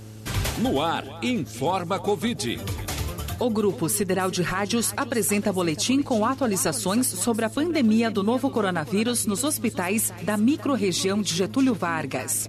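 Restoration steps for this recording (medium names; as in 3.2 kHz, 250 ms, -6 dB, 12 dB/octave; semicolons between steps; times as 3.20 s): de-hum 108.2 Hz, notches 5; inverse comb 312 ms -16.5 dB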